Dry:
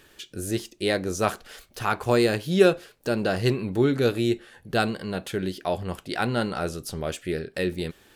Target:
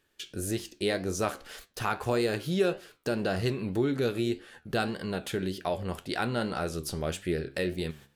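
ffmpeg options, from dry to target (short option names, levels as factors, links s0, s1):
-af "agate=range=0.141:threshold=0.00398:ratio=16:detection=peak,acompressor=threshold=0.0398:ratio=2,flanger=delay=9.9:depth=5.2:regen=80:speed=1.8:shape=triangular,volume=1.58"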